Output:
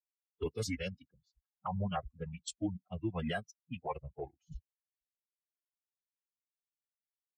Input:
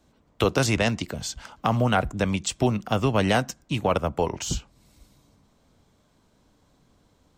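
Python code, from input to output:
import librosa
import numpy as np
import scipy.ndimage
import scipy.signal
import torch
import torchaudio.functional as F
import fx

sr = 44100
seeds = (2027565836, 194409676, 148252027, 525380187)

y = fx.bin_expand(x, sr, power=3.0)
y = fx.env_lowpass(y, sr, base_hz=320.0, full_db=-26.0)
y = fx.pitch_keep_formants(y, sr, semitones=-3.5)
y = F.gain(torch.from_numpy(y), -8.0).numpy()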